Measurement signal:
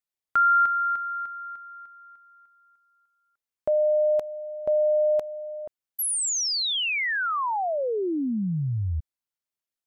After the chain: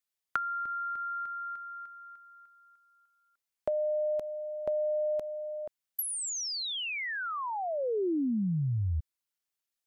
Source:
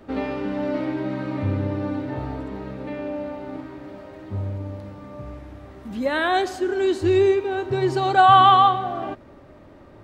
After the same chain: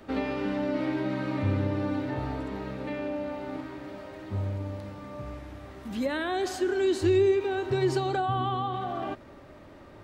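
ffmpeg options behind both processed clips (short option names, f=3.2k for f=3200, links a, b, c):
-filter_complex "[0:a]tiltshelf=f=1.3k:g=-3,acrossover=split=440[a][b];[b]acompressor=threshold=-36dB:ratio=16:attack=44:release=59:knee=6:detection=peak[c];[a][c]amix=inputs=2:normalize=0"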